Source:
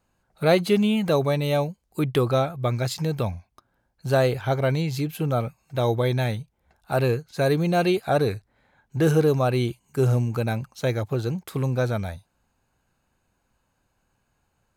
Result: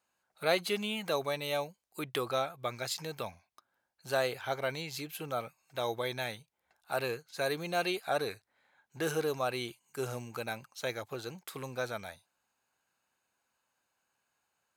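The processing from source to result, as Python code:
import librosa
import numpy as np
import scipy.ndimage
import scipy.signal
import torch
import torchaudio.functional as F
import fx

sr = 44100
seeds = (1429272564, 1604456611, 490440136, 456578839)

y = fx.highpass(x, sr, hz=1100.0, slope=6)
y = y * 10.0 ** (-3.5 / 20.0)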